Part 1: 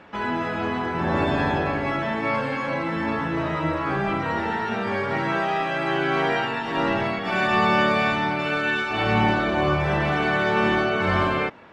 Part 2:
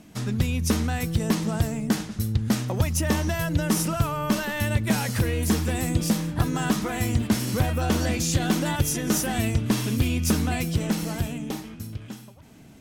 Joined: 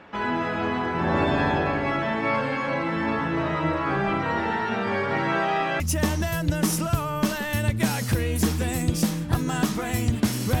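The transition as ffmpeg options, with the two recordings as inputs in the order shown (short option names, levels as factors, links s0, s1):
-filter_complex "[0:a]apad=whole_dur=10.6,atrim=end=10.6,atrim=end=5.802[s0];[1:a]atrim=start=2.868:end=7.67[s1];[s0][s1]acrossfade=d=0.004:c1=hsin:c2=hsin"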